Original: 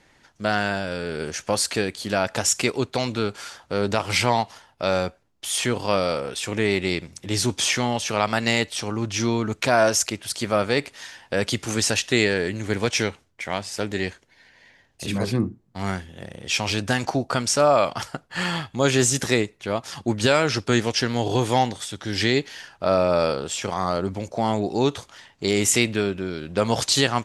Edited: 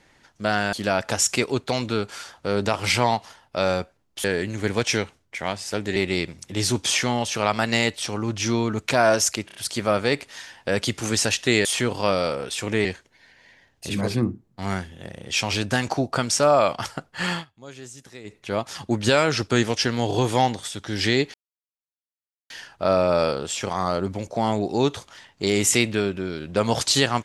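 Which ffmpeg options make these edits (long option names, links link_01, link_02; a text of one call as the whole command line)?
ffmpeg -i in.wav -filter_complex "[0:a]asplit=12[link_01][link_02][link_03][link_04][link_05][link_06][link_07][link_08][link_09][link_10][link_11][link_12];[link_01]atrim=end=0.732[link_13];[link_02]atrim=start=1.988:end=5.502[link_14];[link_03]atrim=start=12.298:end=14.022[link_15];[link_04]atrim=start=6.698:end=10.232[link_16];[link_05]atrim=start=10.198:end=10.232[link_17];[link_06]atrim=start=10.198:end=10.232[link_18];[link_07]atrim=start=10.198:end=12.302[link_19];[link_08]atrim=start=5.498:end=6.702[link_20];[link_09]atrim=start=14.018:end=18.62,asetpts=PTS-STARTPTS,afade=type=out:start_time=4.482:duration=0.12:silence=0.0841395[link_21];[link_10]atrim=start=18.62:end=19.41,asetpts=PTS-STARTPTS,volume=-21.5dB[link_22];[link_11]atrim=start=19.41:end=22.51,asetpts=PTS-STARTPTS,afade=type=in:duration=0.12:silence=0.0841395,afade=type=out:start_time=3.096:duration=0.004:curve=hsin,apad=pad_dur=1.16[link_23];[link_12]atrim=start=22.51,asetpts=PTS-STARTPTS,afade=type=in:duration=0.004:curve=hsin[link_24];[link_13][link_14]acrossfade=duration=0.004:curve1=hsin:curve2=hsin[link_25];[link_25][link_15]acrossfade=duration=0.004:curve1=hsin:curve2=hsin[link_26];[link_26][link_16]acrossfade=duration=0.004:curve1=hsin:curve2=hsin[link_27];[link_27][link_17]acrossfade=duration=0.004:curve1=hsin:curve2=hsin[link_28];[link_28][link_18]acrossfade=duration=0.004:curve1=hsin:curve2=hsin[link_29];[link_29][link_19]acrossfade=duration=0.004:curve1=hsin:curve2=hsin[link_30];[link_30][link_20]acrossfade=duration=0.004:curve1=hsin:curve2=hsin[link_31];[link_21][link_22][link_23][link_24]concat=n=4:v=0:a=1[link_32];[link_31][link_32]acrossfade=duration=0.004:curve1=hsin:curve2=hsin" out.wav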